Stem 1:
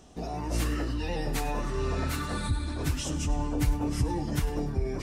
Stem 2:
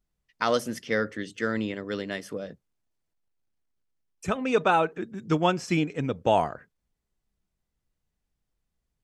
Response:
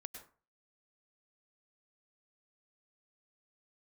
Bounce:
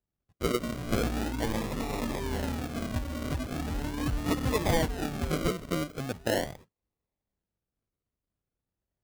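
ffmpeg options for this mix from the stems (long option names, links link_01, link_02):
-filter_complex "[0:a]equalizer=frequency=240:width_type=o:width=0.2:gain=15,adelay=450,volume=-4dB,asplit=2[link_01][link_02];[link_02]volume=-19dB[link_03];[1:a]equalizer=frequency=100:width_type=o:width=0.33:gain=7,equalizer=frequency=1250:width_type=o:width=0.33:gain=7,equalizer=frequency=2000:width_type=o:width=0.33:gain=10,equalizer=frequency=3150:width_type=o:width=0.33:gain=-5,equalizer=frequency=5000:width_type=o:width=0.33:gain=-6,equalizer=frequency=8000:width_type=o:width=0.33:gain=11,volume=-7dB[link_04];[link_03]aecho=0:1:936:1[link_05];[link_01][link_04][link_05]amix=inputs=3:normalize=0,highpass=41,acrusher=samples=40:mix=1:aa=0.000001:lfo=1:lforange=24:lforate=0.4"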